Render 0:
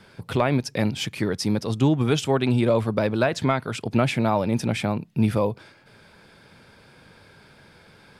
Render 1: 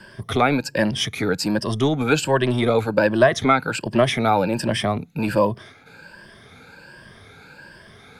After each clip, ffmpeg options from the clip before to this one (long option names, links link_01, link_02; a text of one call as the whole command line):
ffmpeg -i in.wav -filter_complex "[0:a]afftfilt=real='re*pow(10,13/40*sin(2*PI*(1.3*log(max(b,1)*sr/1024/100)/log(2)-(1.3)*(pts-256)/sr)))':imag='im*pow(10,13/40*sin(2*PI*(1.3*log(max(b,1)*sr/1024/100)/log(2)-(1.3)*(pts-256)/sr)))':win_size=1024:overlap=0.75,equalizer=frequency=1600:width_type=o:width=0.22:gain=6,acrossover=split=290|1100[link_01][link_02][link_03];[link_01]asoftclip=type=tanh:threshold=-26.5dB[link_04];[link_04][link_02][link_03]amix=inputs=3:normalize=0,volume=3dB" out.wav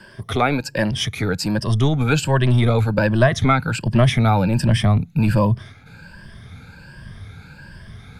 ffmpeg -i in.wav -af "asubboost=boost=8:cutoff=140" out.wav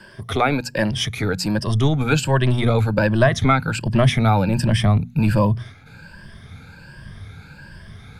ffmpeg -i in.wav -af "bandreject=frequency=60:width_type=h:width=6,bandreject=frequency=120:width_type=h:width=6,bandreject=frequency=180:width_type=h:width=6,bandreject=frequency=240:width_type=h:width=6" out.wav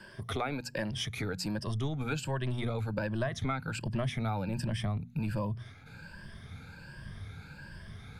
ffmpeg -i in.wav -af "acompressor=threshold=-28dB:ratio=2.5,volume=-6.5dB" out.wav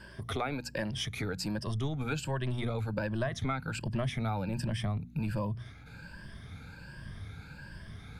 ffmpeg -i in.wav -af "aeval=exprs='val(0)+0.002*(sin(2*PI*60*n/s)+sin(2*PI*2*60*n/s)/2+sin(2*PI*3*60*n/s)/3+sin(2*PI*4*60*n/s)/4+sin(2*PI*5*60*n/s)/5)':channel_layout=same" out.wav